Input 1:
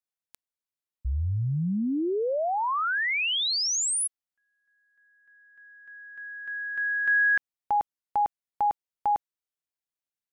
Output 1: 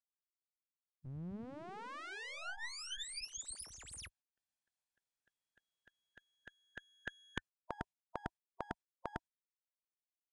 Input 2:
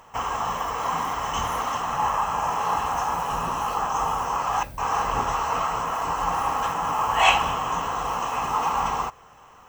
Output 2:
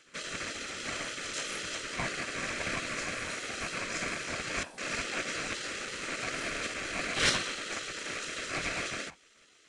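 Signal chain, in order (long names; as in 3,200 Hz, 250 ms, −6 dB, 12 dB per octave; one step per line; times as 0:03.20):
lower of the sound and its delayed copy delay 1.2 ms
gate on every frequency bin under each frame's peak −15 dB weak
downsampling to 22,050 Hz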